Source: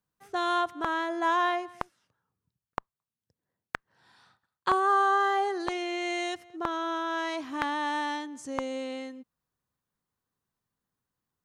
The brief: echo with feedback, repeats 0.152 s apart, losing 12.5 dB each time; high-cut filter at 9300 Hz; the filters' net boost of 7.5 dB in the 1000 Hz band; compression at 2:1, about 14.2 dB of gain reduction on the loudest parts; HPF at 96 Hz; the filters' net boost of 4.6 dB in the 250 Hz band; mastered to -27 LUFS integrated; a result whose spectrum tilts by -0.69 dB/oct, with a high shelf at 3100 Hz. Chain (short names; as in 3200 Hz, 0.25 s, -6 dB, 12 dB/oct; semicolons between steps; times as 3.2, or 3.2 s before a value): HPF 96 Hz; LPF 9300 Hz; bell 250 Hz +6 dB; bell 1000 Hz +8.5 dB; high shelf 3100 Hz +3 dB; compressor 2:1, threshold -41 dBFS; feedback echo 0.152 s, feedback 24%, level -12.5 dB; gain +8 dB